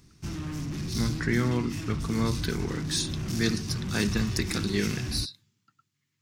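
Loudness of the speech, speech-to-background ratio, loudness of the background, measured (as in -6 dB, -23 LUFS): -30.5 LUFS, 3.5 dB, -34.0 LUFS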